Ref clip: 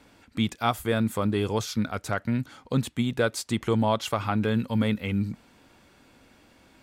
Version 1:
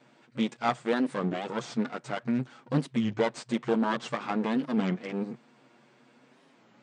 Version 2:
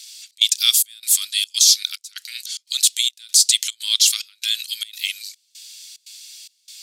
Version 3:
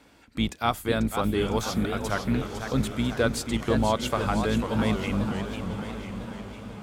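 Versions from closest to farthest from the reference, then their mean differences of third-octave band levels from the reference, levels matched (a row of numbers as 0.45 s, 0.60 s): 1, 3, 2; 6.0 dB, 8.0 dB, 20.5 dB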